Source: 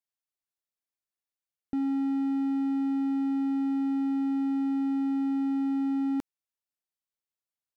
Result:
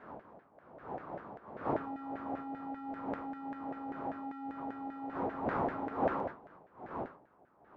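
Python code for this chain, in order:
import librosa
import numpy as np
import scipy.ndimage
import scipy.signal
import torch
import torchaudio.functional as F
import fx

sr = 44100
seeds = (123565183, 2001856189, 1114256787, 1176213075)

y = fx.dmg_wind(x, sr, seeds[0], corner_hz=280.0, level_db=-27.0)
y = fx.filter_lfo_bandpass(y, sr, shape='saw_down', hz=5.1, low_hz=660.0, high_hz=1700.0, q=3.3)
y = y * 10.0 ** (3.5 / 20.0)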